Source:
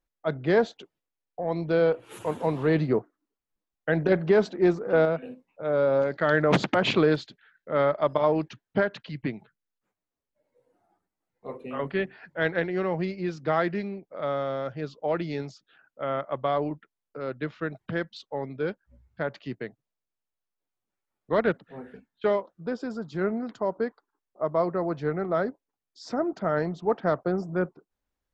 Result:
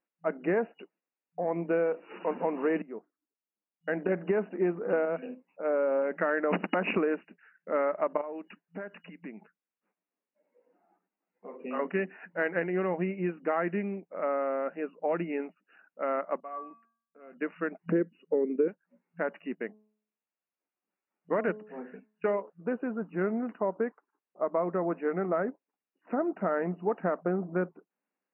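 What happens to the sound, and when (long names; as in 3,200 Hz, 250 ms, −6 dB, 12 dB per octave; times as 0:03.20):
0:02.82–0:04.81: fade in, from −21 dB
0:08.21–0:11.59: downward compressor 2.5 to 1, threshold −42 dBFS
0:16.40–0:17.33: tuned comb filter 230 Hz, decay 0.49 s, harmonics odd, mix 90%
0:17.92–0:18.68: low shelf with overshoot 560 Hz +10 dB, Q 3
0:19.58–0:22.50: hum removal 213.3 Hz, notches 5
whole clip: brick-wall band-pass 170–2,900 Hz; downward compressor, threshold −24 dBFS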